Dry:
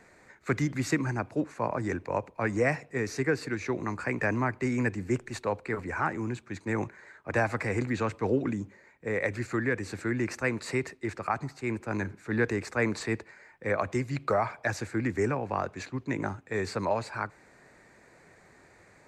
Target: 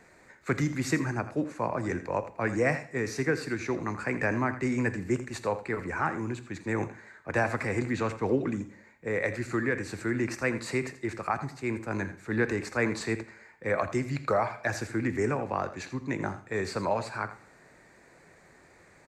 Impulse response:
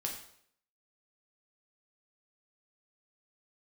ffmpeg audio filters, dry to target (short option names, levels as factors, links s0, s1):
-filter_complex "[0:a]aecho=1:1:83:0.211,asplit=2[s0][s1];[1:a]atrim=start_sample=2205,highshelf=f=7900:g=7.5[s2];[s1][s2]afir=irnorm=-1:irlink=0,volume=0.316[s3];[s0][s3]amix=inputs=2:normalize=0,volume=0.794"